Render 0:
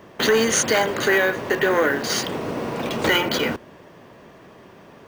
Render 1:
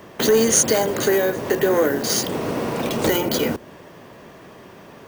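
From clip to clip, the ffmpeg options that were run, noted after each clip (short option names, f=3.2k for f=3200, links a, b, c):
-filter_complex "[0:a]highshelf=f=6.8k:g=7,acrossover=split=780|5000[a][b][c];[b]acompressor=threshold=-33dB:ratio=6[d];[a][d][c]amix=inputs=3:normalize=0,volume=3dB"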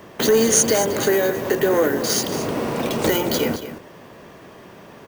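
-af "aecho=1:1:222:0.251"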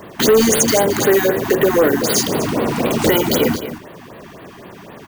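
-af "asoftclip=type=hard:threshold=-13.5dB,afftfilt=real='re*(1-between(b*sr/1024,450*pow(6900/450,0.5+0.5*sin(2*PI*3.9*pts/sr))/1.41,450*pow(6900/450,0.5+0.5*sin(2*PI*3.9*pts/sr))*1.41))':imag='im*(1-between(b*sr/1024,450*pow(6900/450,0.5+0.5*sin(2*PI*3.9*pts/sr))/1.41,450*pow(6900/450,0.5+0.5*sin(2*PI*3.9*pts/sr))*1.41))':win_size=1024:overlap=0.75,volume=6dB"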